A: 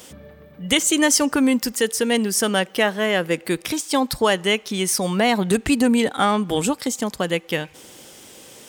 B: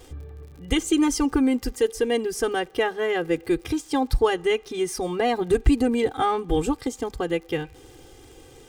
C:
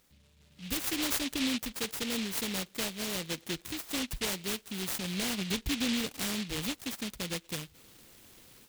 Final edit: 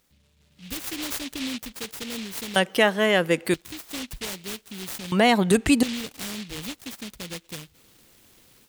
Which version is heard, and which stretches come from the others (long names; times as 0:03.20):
C
0:02.56–0:03.54: punch in from A
0:05.12–0:05.83: punch in from A
not used: B